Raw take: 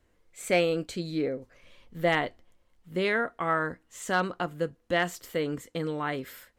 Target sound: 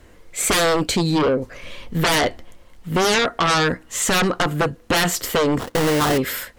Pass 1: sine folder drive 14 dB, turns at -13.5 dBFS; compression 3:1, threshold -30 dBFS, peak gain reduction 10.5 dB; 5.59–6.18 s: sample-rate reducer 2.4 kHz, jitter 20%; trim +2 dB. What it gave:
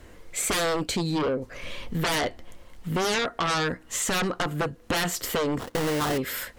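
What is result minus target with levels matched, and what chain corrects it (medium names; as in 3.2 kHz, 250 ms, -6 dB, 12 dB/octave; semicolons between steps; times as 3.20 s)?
compression: peak gain reduction +7.5 dB
sine folder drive 14 dB, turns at -13.5 dBFS; compression 3:1, threshold -18.5 dBFS, peak gain reduction 3 dB; 5.59–6.18 s: sample-rate reducer 2.4 kHz, jitter 20%; trim +2 dB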